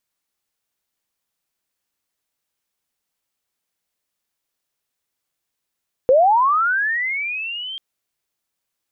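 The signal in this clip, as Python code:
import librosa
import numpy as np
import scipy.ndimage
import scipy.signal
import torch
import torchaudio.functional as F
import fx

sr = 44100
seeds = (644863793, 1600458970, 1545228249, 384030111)

y = fx.chirp(sr, length_s=1.69, from_hz=490.0, to_hz=3200.0, law='linear', from_db=-9.0, to_db=-27.5)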